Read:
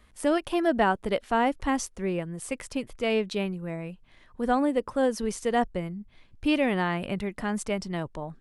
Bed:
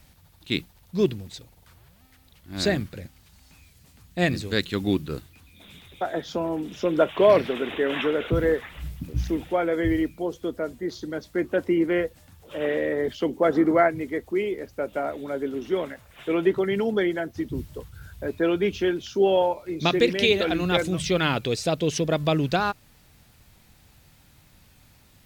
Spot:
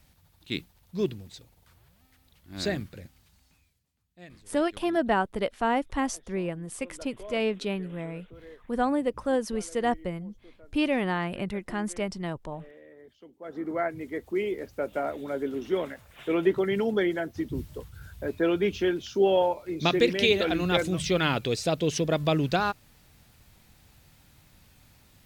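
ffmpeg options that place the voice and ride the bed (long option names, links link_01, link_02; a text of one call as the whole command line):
ffmpeg -i stem1.wav -i stem2.wav -filter_complex "[0:a]adelay=4300,volume=-1.5dB[link_01];[1:a]volume=18dB,afade=type=out:start_time=3.18:duration=0.67:silence=0.1,afade=type=in:start_time=13.39:duration=1.14:silence=0.0630957[link_02];[link_01][link_02]amix=inputs=2:normalize=0" out.wav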